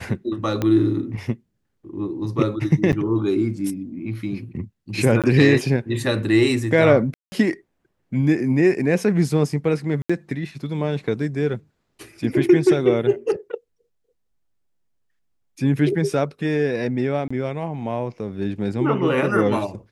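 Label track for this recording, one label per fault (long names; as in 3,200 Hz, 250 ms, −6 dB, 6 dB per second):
0.620000	0.620000	click −10 dBFS
2.920000	2.930000	drop-out 9.1 ms
5.220000	5.240000	drop-out 17 ms
7.140000	7.320000	drop-out 180 ms
10.020000	10.100000	drop-out 75 ms
17.280000	17.300000	drop-out 25 ms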